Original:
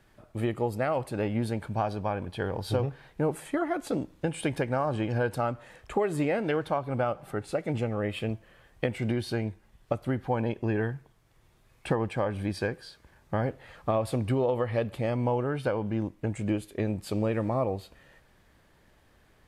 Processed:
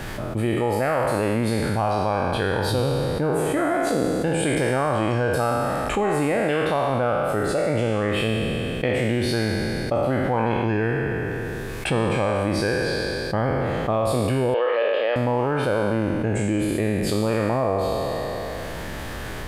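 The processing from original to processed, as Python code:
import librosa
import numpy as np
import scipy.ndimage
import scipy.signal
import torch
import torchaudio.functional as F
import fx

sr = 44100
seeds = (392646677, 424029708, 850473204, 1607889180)

y = fx.spec_trails(x, sr, decay_s=1.66)
y = fx.cabinet(y, sr, low_hz=410.0, low_slope=24, high_hz=4100.0, hz=(510.0, 1600.0, 2900.0), db=(5, 6, 9), at=(14.54, 15.16))
y = fx.env_flatten(y, sr, amount_pct=70)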